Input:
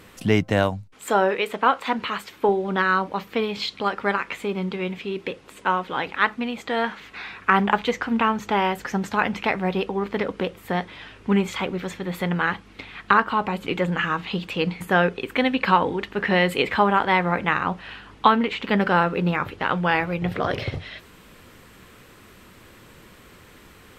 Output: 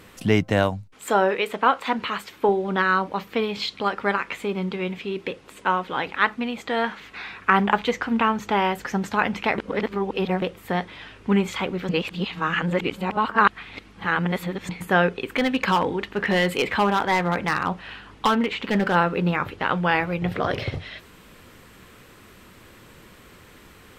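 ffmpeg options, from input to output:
ffmpeg -i in.wav -filter_complex "[0:a]asplit=3[link_01][link_02][link_03];[link_01]afade=type=out:start_time=15.23:duration=0.02[link_04];[link_02]volume=14.5dB,asoftclip=hard,volume=-14.5dB,afade=type=in:start_time=15.23:duration=0.02,afade=type=out:start_time=18.94:duration=0.02[link_05];[link_03]afade=type=in:start_time=18.94:duration=0.02[link_06];[link_04][link_05][link_06]amix=inputs=3:normalize=0,asplit=5[link_07][link_08][link_09][link_10][link_11];[link_07]atrim=end=9.582[link_12];[link_08]atrim=start=9.578:end=10.422,asetpts=PTS-STARTPTS,areverse[link_13];[link_09]atrim=start=10.418:end=11.892[link_14];[link_10]atrim=start=11.888:end=14.692,asetpts=PTS-STARTPTS,areverse[link_15];[link_11]atrim=start=14.688[link_16];[link_12][link_13]acrossfade=duration=0.004:curve1=hsin:curve2=hsin[link_17];[link_17][link_14]acrossfade=duration=0.004:curve1=hsin:curve2=hsin[link_18];[link_18][link_15]acrossfade=duration=0.004:curve1=hsin:curve2=hsin[link_19];[link_19][link_16]acrossfade=duration=0.004:curve1=hsin:curve2=hsin" out.wav

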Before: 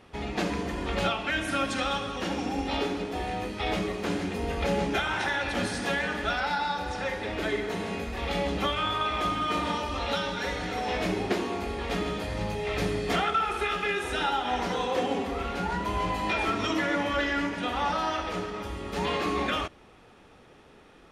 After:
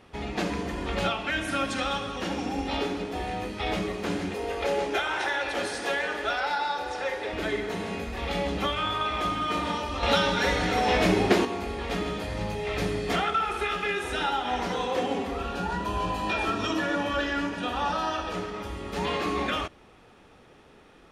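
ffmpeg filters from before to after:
ffmpeg -i in.wav -filter_complex "[0:a]asettb=1/sr,asplit=3[link_01][link_02][link_03];[link_01]atrim=end=4.344[link_04];[link_02]atrim=start=4.34:end=7.33,asetpts=PTS-STARTPTS,afade=type=in:duration=0.004:curve=qsin,afade=type=out:start_time=2.986:duration=0.004:curve=qsin,lowshelf=frequency=280:width_type=q:width=1.5:gain=-10[link_05];[link_03]atrim=start=7.326[link_06];[link_04][link_05]acrossfade=duration=0.004:curve1=hsin:curve2=qsin[link_07];[link_07][link_06]acrossfade=duration=0.004:curve1=qsin:curve2=hsin,asettb=1/sr,asplit=3[link_08][link_09][link_10];[link_08]atrim=end=15.374[link_11];[link_09]atrim=start=15.37:end=18.35,asetpts=PTS-STARTPTS,afade=type=in:duration=0.004:curve=qsin,afade=type=out:start_time=2.976:duration=0.004:curve=qsin,asuperstop=centerf=2100:order=8:qfactor=7.1[link_12];[link_10]atrim=start=18.346[link_13];[link_11][link_12]acrossfade=duration=0.004:curve1=hsin:curve2=qsin[link_14];[link_14][link_13]acrossfade=duration=0.004:curve1=qsin:curve2=hsin,asplit=3[link_15][link_16][link_17];[link_15]atrim=end=10.032[link_18];[link_16]atrim=start=10.028:end=11.452,asetpts=PTS-STARTPTS,volume=6.5dB[link_19];[link_17]atrim=start=11.448[link_20];[link_18][link_19]acrossfade=duration=0.004:curve1=hsin:curve2=hsin[link_21];[link_21][link_20]acrossfade=duration=0.004:curve1=hsin:curve2=hsin" out.wav

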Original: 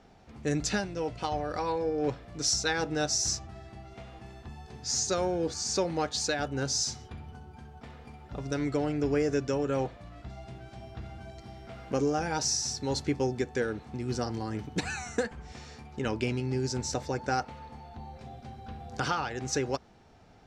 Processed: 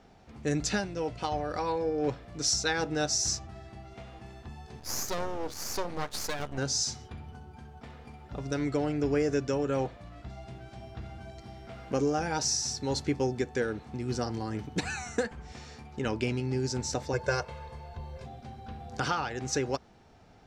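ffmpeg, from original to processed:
ffmpeg -i in.wav -filter_complex "[0:a]asettb=1/sr,asplit=3[link_01][link_02][link_03];[link_01]atrim=end=4.794[link_04];[link_02]atrim=start=4.79:end=6.58,asetpts=PTS-STARTPTS,afade=type=in:duration=0.004:curve=qsin,afade=type=out:start_time=1.786:duration=0.004:curve=qsin,aeval=exprs='max(val(0),0)':channel_layout=same[link_05];[link_03]atrim=start=6.576[link_06];[link_04][link_05]acrossfade=duration=0.004:curve1=hsin:curve2=qsin[link_07];[link_07][link_06]acrossfade=duration=0.004:curve1=qsin:curve2=hsin,asettb=1/sr,asplit=3[link_08][link_09][link_10];[link_08]atrim=end=17.134[link_11];[link_09]atrim=start=17.13:end=18.26,asetpts=PTS-STARTPTS,afade=type=in:duration=0.004:curve=qsin,afade=type=out:start_time=1.126:duration=0.004:curve=qsin,aecho=1:1:1.9:0.98,atrim=end_sample=49833[link_12];[link_10]atrim=start=18.256[link_13];[link_11][link_12]acrossfade=duration=0.004:curve1=hsin:curve2=qsin[link_14];[link_14][link_13]acrossfade=duration=0.004:curve1=qsin:curve2=hsin" out.wav

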